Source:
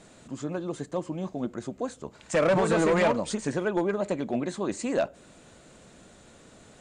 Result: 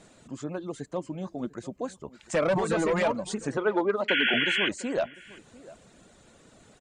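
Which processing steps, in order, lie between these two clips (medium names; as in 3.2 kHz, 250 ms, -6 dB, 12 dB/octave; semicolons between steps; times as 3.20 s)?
reverb removal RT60 0.63 s; 4.08–4.69 s: painted sound noise 1.4–3.4 kHz -25 dBFS; 3.57–4.34 s: cabinet simulation 240–5200 Hz, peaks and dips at 250 Hz +7 dB, 420 Hz +6 dB, 900 Hz +5 dB, 1.3 kHz +9 dB, 3.8 kHz +3 dB; echo from a far wall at 120 m, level -20 dB; trim -1.5 dB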